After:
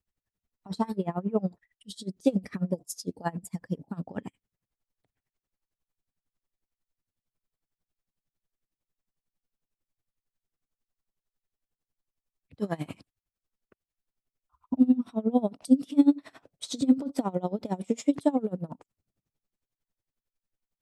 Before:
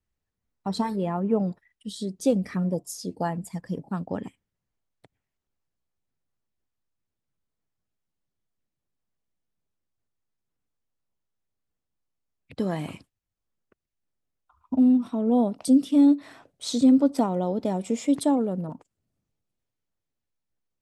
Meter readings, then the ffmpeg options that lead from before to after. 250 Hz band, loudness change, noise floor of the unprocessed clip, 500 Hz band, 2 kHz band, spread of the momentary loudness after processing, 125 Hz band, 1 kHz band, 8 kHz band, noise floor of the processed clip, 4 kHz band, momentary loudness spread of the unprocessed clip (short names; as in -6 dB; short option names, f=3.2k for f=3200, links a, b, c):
-4.0 dB, -4.0 dB, -85 dBFS, -4.0 dB, -3.0 dB, 16 LU, -4.0 dB, -4.5 dB, -5.0 dB, under -85 dBFS, -5.0 dB, 15 LU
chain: -af "aeval=exprs='val(0)*pow(10,-24*(0.5-0.5*cos(2*PI*11*n/s))/20)':c=same,volume=2dB"